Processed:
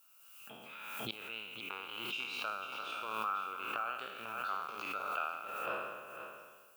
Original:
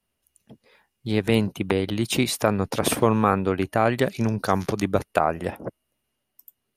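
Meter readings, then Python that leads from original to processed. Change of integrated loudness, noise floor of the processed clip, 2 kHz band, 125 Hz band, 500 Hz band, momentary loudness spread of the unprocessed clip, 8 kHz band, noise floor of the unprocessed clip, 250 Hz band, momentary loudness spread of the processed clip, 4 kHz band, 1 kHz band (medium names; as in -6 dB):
-16.0 dB, -61 dBFS, -8.5 dB, -34.0 dB, -23.5 dB, 7 LU, -23.5 dB, -79 dBFS, -30.0 dB, 12 LU, -10.5 dB, -11.5 dB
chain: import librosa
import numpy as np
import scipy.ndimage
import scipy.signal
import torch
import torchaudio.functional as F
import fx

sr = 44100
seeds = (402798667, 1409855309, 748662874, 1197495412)

p1 = fx.spec_trails(x, sr, decay_s=1.19)
p2 = fx.gate_flip(p1, sr, shuts_db=-16.0, range_db=-25)
p3 = fx.rider(p2, sr, range_db=3, speed_s=0.5)
p4 = fx.double_bandpass(p3, sr, hz=1900.0, octaves=0.97)
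p5 = fx.env_lowpass(p4, sr, base_hz=2100.0, full_db=-47.5)
p6 = fx.dmg_noise_colour(p5, sr, seeds[0], colour='violet', level_db=-78.0)
p7 = p6 + fx.echo_single(p6, sr, ms=497, db=-9.0, dry=0)
p8 = fx.pre_swell(p7, sr, db_per_s=34.0)
y = F.gain(torch.from_numpy(p8), 12.5).numpy()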